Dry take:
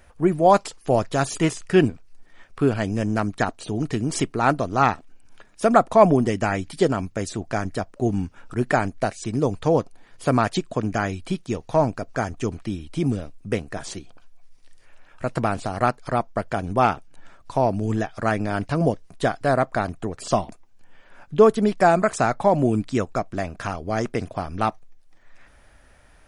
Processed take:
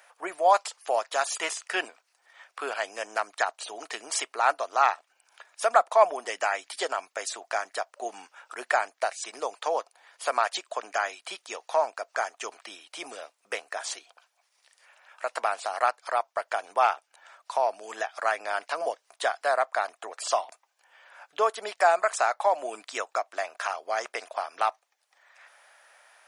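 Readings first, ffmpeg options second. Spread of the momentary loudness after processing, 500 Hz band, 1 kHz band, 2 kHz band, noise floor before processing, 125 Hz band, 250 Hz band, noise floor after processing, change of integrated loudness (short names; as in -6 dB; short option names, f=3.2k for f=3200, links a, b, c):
15 LU, -7.0 dB, -2.5 dB, -1.0 dB, -52 dBFS, under -40 dB, -27.0 dB, -74 dBFS, -5.5 dB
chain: -filter_complex "[0:a]highpass=f=650:w=0.5412,highpass=f=650:w=1.3066,asplit=2[a][b];[b]acompressor=threshold=-30dB:ratio=6,volume=-1dB[c];[a][c]amix=inputs=2:normalize=0,volume=-3.5dB"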